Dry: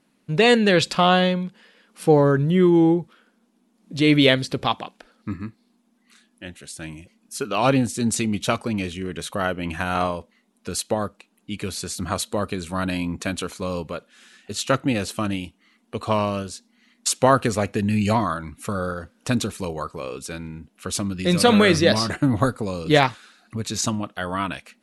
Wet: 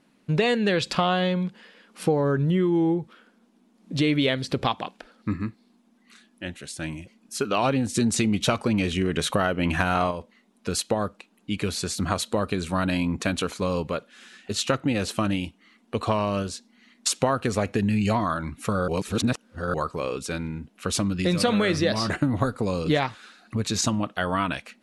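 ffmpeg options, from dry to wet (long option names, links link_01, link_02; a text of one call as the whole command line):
ffmpeg -i in.wav -filter_complex "[0:a]asplit=3[link_01][link_02][link_03];[link_01]afade=type=out:start_time=7.94:duration=0.02[link_04];[link_02]acontrast=51,afade=type=in:start_time=7.94:duration=0.02,afade=type=out:start_time=10.1:duration=0.02[link_05];[link_03]afade=type=in:start_time=10.1:duration=0.02[link_06];[link_04][link_05][link_06]amix=inputs=3:normalize=0,asplit=3[link_07][link_08][link_09];[link_07]atrim=end=18.882[link_10];[link_08]atrim=start=18.878:end=19.742,asetpts=PTS-STARTPTS,areverse[link_11];[link_09]atrim=start=19.738[link_12];[link_10][link_11]acrossfade=duration=0.004:curve1=hsin:curve2=hsin[link_13];[link_13][link_12]acrossfade=duration=0.004:curve1=hsin:curve2=hsin,highshelf=frequency=8900:gain=-9,acompressor=threshold=-23dB:ratio=5,volume=3dB" out.wav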